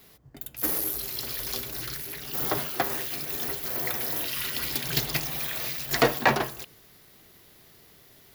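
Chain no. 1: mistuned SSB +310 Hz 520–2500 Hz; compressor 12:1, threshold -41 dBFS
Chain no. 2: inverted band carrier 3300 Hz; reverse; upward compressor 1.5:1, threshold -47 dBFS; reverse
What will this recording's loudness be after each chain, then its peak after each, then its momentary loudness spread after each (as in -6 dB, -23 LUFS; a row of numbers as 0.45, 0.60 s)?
-45.0, -30.0 LUFS; -25.0, -7.0 dBFS; 19, 17 LU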